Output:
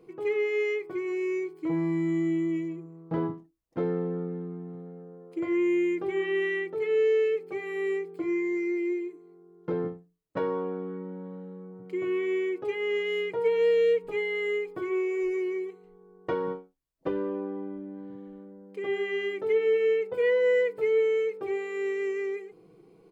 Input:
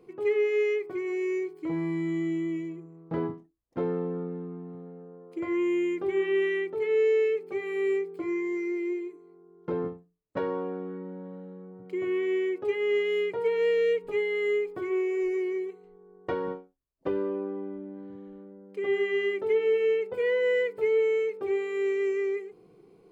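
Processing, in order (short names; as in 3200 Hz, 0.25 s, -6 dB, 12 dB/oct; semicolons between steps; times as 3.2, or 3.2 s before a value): comb 6.2 ms, depth 33%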